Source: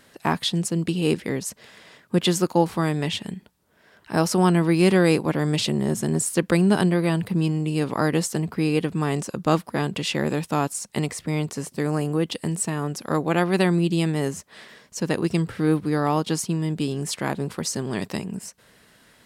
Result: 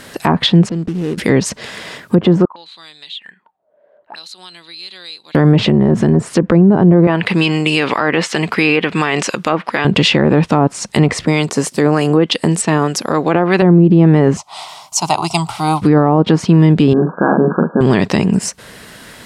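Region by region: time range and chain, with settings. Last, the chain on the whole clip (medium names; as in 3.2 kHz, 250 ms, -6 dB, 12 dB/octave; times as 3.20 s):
0.69–1.18 s: median filter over 41 samples + compression 3:1, threshold -40 dBFS
2.45–5.35 s: auto-wah 540–4000 Hz, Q 13, up, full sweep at -22 dBFS + compression 2:1, threshold -49 dBFS + peaking EQ 5.4 kHz -11.5 dB 0.26 oct
7.07–9.85 s: high-pass 660 Hz 6 dB/octave + peaking EQ 2.4 kHz +8.5 dB 1.4 oct + tape noise reduction on one side only decoder only
11.25–13.62 s: high-pass 250 Hz 6 dB/octave + harmonic tremolo 3.3 Hz, depth 50%, crossover 1.3 kHz
14.37–15.82 s: resonant low shelf 550 Hz -12 dB, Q 3 + static phaser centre 340 Hz, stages 8
16.93–17.81 s: brick-wall FIR band-pass 150–1700 Hz + doubling 41 ms -6 dB
whole clip: low-pass that closes with the level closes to 820 Hz, closed at -17 dBFS; loudness maximiser +19.5 dB; trim -1 dB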